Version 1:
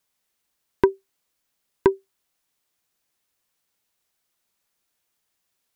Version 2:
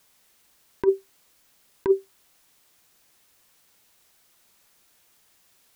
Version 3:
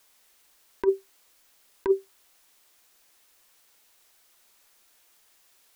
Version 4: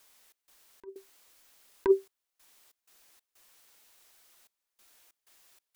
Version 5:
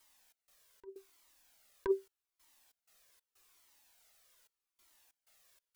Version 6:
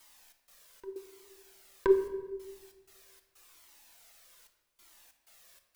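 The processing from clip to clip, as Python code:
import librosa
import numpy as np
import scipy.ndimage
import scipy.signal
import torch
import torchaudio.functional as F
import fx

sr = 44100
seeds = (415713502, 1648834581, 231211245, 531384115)

y1 = fx.over_compress(x, sr, threshold_db=-26.0, ratio=-1.0)
y1 = y1 * 10.0 ** (6.5 / 20.0)
y2 = fx.peak_eq(y1, sr, hz=130.0, db=-13.5, octaves=1.5)
y3 = fx.step_gate(y2, sr, bpm=94, pattern='xx.xx.xxxxxxx..', floor_db=-24.0, edge_ms=4.5)
y4 = fx.comb_cascade(y3, sr, direction='falling', hz=0.82)
y4 = y4 * 10.0 ** (-2.0 / 20.0)
y5 = fx.room_shoebox(y4, sr, seeds[0], volume_m3=860.0, walls='mixed', distance_m=0.79)
y5 = y5 * 10.0 ** (8.5 / 20.0)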